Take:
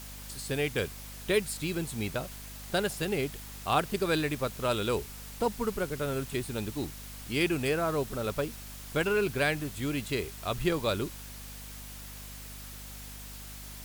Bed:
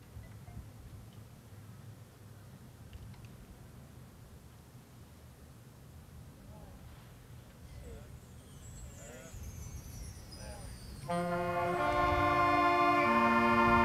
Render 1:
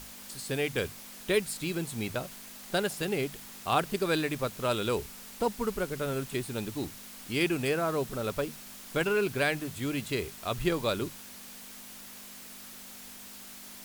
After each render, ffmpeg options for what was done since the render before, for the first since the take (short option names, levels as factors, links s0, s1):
-af "bandreject=f=50:t=h:w=6,bandreject=f=100:t=h:w=6,bandreject=f=150:t=h:w=6"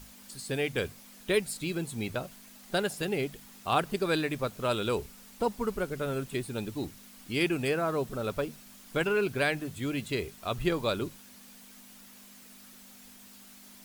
-af "afftdn=nr=7:nf=-47"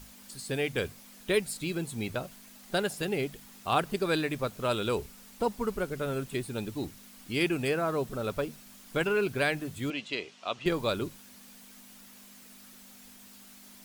-filter_complex "[0:a]asettb=1/sr,asplit=3[s0][s1][s2];[s0]atrim=end=9.904[s3];[s1]atrim=start=9.9:end=10.66,asetpts=PTS-STARTPTS,afade=t=in:d=0.004:c=qsin,afade=t=out:st=0.756:d=0.004:c=qsin,highpass=320,equalizer=f=400:t=q:w=4:g=-6,equalizer=f=1600:t=q:w=4:g=-3,equalizer=f=2900:t=q:w=4:g=6,lowpass=f=6300:w=0.5412,lowpass=f=6300:w=1.3066[s4];[s2]atrim=start=10.656[s5];[s3][s4]acrossfade=d=0.004:c1=hsin:c2=qsin[s6];[s6][s5]acrossfade=d=0.004:c1=qsin:c2=hsin"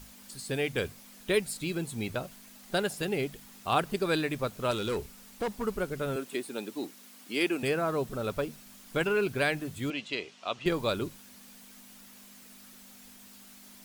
-filter_complex "[0:a]asettb=1/sr,asplit=3[s0][s1][s2];[s0]atrim=end=4.714[s3];[s1]atrim=start=4.71:end=5.64,asetpts=PTS-STARTPTS,afade=t=in:d=0.004:c=qsin,afade=t=out:st=0.926:d=0.004:c=qsin,asoftclip=type=hard:threshold=0.0473[s4];[s2]atrim=start=5.636[s5];[s3][s4]acrossfade=d=0.004:c1=hsin:c2=qsin[s6];[s6][s5]acrossfade=d=0.004:c1=qsin:c2=hsin,asettb=1/sr,asplit=3[s7][s8][s9];[s7]atrim=end=6.164[s10];[s8]atrim=start=6.16:end=7.63,asetpts=PTS-STARTPTS,afade=t=in:d=0.004:c=qsin,afade=t=out:st=1.466:d=0.004:c=qsin,highpass=f=230:w=0.5412,highpass=f=230:w=1.3066[s11];[s9]atrim=start=7.626[s12];[s10][s11]acrossfade=d=0.004:c1=hsin:c2=qsin[s13];[s13][s12]acrossfade=d=0.004:c1=qsin:c2=hsin"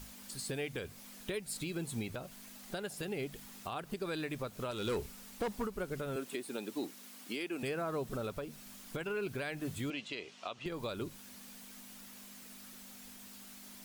-af "acompressor=threshold=0.0282:ratio=6,alimiter=level_in=1.5:limit=0.0631:level=0:latency=1:release=262,volume=0.668"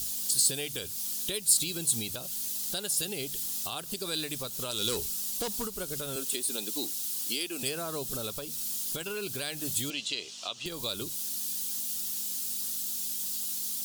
-af "aexciter=amount=4.7:drive=8:freq=3100"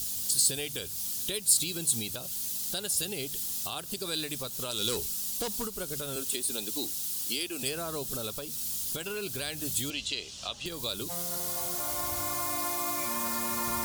-filter_complex "[1:a]volume=0.398[s0];[0:a][s0]amix=inputs=2:normalize=0"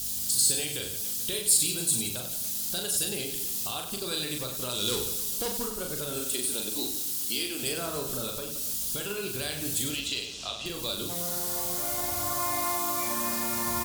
-af "aecho=1:1:40|96|174.4|284.2|437.8:0.631|0.398|0.251|0.158|0.1"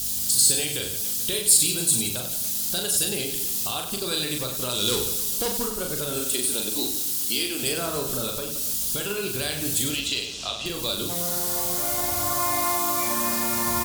-af "volume=1.78"